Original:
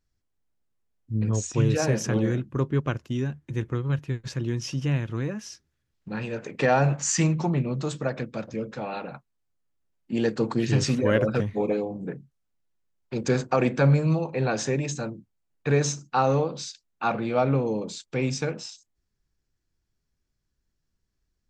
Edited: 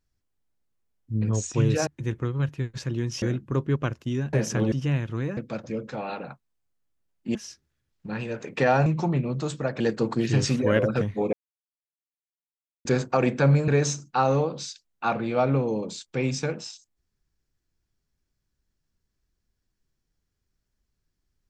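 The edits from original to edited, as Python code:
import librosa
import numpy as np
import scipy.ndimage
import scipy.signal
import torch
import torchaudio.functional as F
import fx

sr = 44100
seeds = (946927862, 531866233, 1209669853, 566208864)

y = fx.edit(x, sr, fx.swap(start_s=1.87, length_s=0.39, other_s=3.37, other_length_s=1.35),
    fx.cut(start_s=6.88, length_s=0.39),
    fx.move(start_s=8.21, length_s=1.98, to_s=5.37),
    fx.silence(start_s=11.72, length_s=1.52),
    fx.cut(start_s=14.07, length_s=1.6), tone=tone)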